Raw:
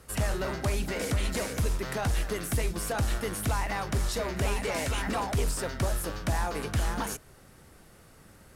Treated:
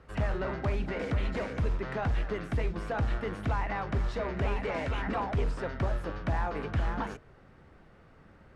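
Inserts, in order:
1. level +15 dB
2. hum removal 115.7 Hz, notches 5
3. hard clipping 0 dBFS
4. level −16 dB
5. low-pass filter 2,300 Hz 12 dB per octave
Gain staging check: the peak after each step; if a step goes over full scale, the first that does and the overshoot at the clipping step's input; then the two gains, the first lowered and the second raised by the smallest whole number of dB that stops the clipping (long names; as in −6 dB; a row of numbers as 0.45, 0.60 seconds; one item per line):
−6.0, −4.0, −4.0, −20.0, −20.5 dBFS
no step passes full scale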